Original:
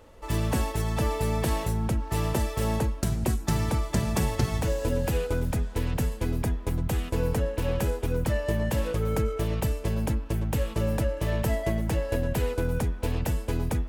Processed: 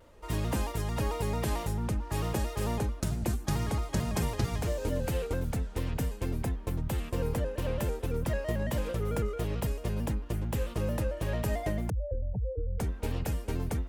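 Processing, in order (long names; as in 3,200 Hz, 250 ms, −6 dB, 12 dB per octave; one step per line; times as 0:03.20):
0:11.90–0:12.80: expanding power law on the bin magnitudes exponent 3.6
pitch modulation by a square or saw wave square 4.5 Hz, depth 100 cents
level −4.5 dB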